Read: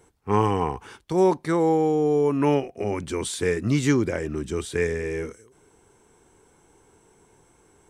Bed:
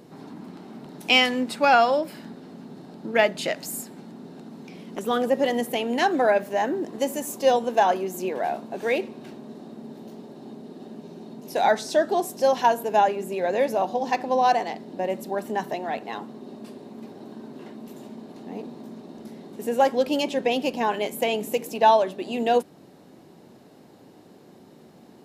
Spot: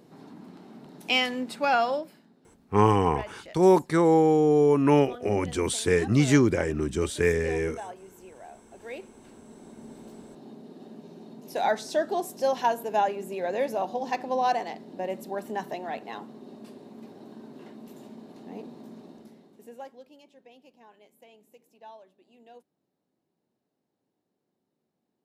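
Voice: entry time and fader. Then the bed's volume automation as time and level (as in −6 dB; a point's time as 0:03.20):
2.45 s, +1.0 dB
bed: 0:01.95 −6 dB
0:02.26 −20 dB
0:08.48 −20 dB
0:09.90 −5 dB
0:19.06 −5 dB
0:20.17 −30.5 dB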